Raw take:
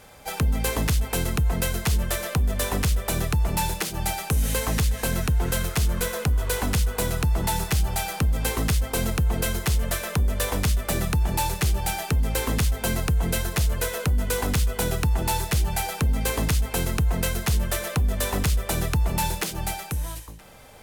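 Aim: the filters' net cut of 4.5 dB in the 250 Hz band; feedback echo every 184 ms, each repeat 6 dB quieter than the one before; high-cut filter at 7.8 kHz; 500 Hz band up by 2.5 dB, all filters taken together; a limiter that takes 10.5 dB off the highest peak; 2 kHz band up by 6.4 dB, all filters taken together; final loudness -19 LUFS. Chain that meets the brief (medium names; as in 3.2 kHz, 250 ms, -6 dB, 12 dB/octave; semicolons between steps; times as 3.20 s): low-pass 7.8 kHz; peaking EQ 250 Hz -8.5 dB; peaking EQ 500 Hz +4.5 dB; peaking EQ 2 kHz +8 dB; peak limiter -19 dBFS; feedback delay 184 ms, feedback 50%, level -6 dB; trim +8 dB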